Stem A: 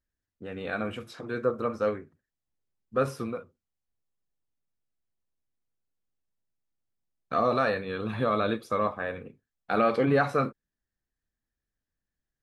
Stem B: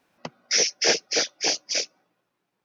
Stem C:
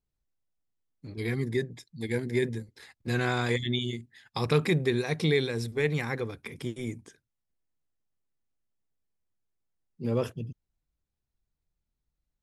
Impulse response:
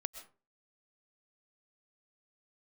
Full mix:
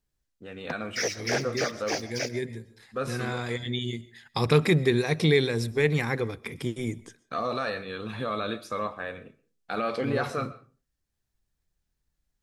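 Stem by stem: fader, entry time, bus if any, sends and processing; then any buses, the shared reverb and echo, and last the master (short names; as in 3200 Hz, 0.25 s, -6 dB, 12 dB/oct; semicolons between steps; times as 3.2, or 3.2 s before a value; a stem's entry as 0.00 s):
-7.5 dB, 0.00 s, bus A, send -4.5 dB, bell 6300 Hz +9.5 dB 2.4 oct
-7.0 dB, 0.45 s, bus A, send -6 dB, median-filter separation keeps percussive; band shelf 4200 Hz -11.5 dB; sample leveller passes 2
+1.0 dB, 0.00 s, no bus, send -7 dB, auto duck -16 dB, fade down 0.20 s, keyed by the first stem
bus A: 0.0 dB, limiter -24.5 dBFS, peak gain reduction 7.5 dB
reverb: on, RT60 0.35 s, pre-delay 85 ms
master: dry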